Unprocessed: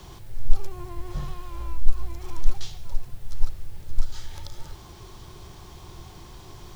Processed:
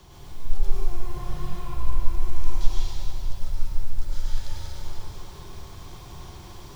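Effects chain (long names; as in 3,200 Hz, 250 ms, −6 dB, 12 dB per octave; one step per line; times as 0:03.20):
dense smooth reverb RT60 3.1 s, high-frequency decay 0.85×, pre-delay 85 ms, DRR −7.5 dB
level −6 dB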